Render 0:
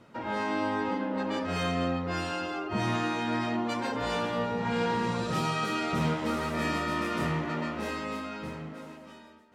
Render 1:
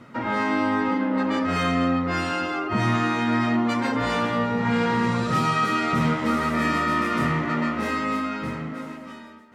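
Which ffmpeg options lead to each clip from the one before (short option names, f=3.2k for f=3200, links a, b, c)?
-filter_complex "[0:a]equalizer=f=125:t=o:w=0.33:g=7,equalizer=f=250:t=o:w=0.33:g=8,equalizer=f=1.25k:t=o:w=0.33:g=7,equalizer=f=2k:t=o:w=0.33:g=7,asplit=2[a][b];[b]alimiter=limit=-22dB:level=0:latency=1:release=497,volume=-1.5dB[c];[a][c]amix=inputs=2:normalize=0"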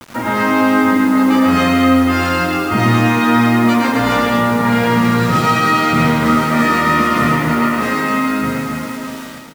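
-filter_complex "[0:a]acrusher=bits=6:mix=0:aa=0.000001,asplit=2[a][b];[b]aecho=0:1:110|247.5|419.4|634.2|902.8:0.631|0.398|0.251|0.158|0.1[c];[a][c]amix=inputs=2:normalize=0,volume=7dB"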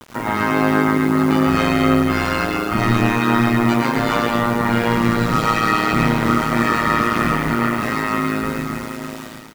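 -af "tremolo=f=110:d=0.889"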